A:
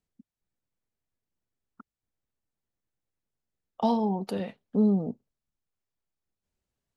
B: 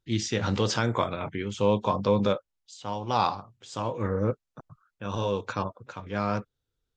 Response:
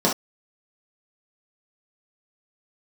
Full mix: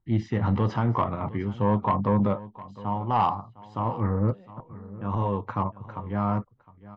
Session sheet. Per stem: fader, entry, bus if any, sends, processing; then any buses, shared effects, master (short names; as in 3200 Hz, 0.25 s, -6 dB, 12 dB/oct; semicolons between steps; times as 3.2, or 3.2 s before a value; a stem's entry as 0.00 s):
-13.5 dB, 0.00 s, no send, no echo send, limiter -28.5 dBFS, peak gain reduction 14.5 dB; high shelf 4000 Hz -11.5 dB
+3.0 dB, 0.00 s, no send, echo send -18 dB, LPF 1300 Hz 12 dB/oct; comb 1 ms, depth 49%; soft clip -16 dBFS, distortion -19 dB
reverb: off
echo: echo 0.709 s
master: dry